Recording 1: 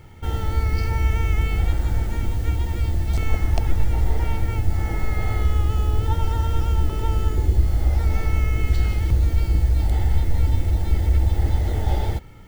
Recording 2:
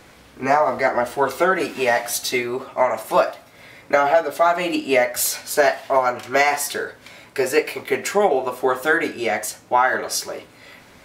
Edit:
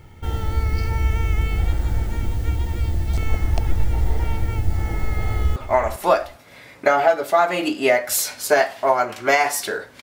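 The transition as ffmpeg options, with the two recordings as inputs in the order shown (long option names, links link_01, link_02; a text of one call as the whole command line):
ffmpeg -i cue0.wav -i cue1.wav -filter_complex "[0:a]apad=whole_dur=10.02,atrim=end=10.02,atrim=end=5.562[link_01];[1:a]atrim=start=2.628:end=7.09[link_02];[link_01][link_02]acrossfade=duration=0.004:curve1=hsin:curve2=hsin,asplit=2[link_03][link_04];[link_04]afade=type=in:start_time=5.2:duration=0.01,afade=type=out:start_time=5.56:duration=0.01,aecho=0:1:400|800:0.251189|0.0376783[link_05];[link_03][link_05]amix=inputs=2:normalize=0" out.wav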